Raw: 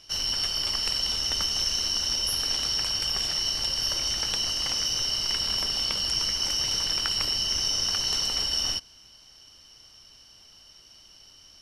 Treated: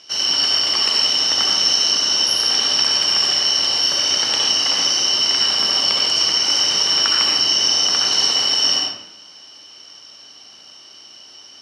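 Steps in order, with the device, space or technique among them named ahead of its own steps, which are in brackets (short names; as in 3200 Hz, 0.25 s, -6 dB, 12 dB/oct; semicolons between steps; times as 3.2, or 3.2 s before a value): supermarket ceiling speaker (BPF 250–6900 Hz; reverb RT60 0.90 s, pre-delay 59 ms, DRR -2 dB); gain +7.5 dB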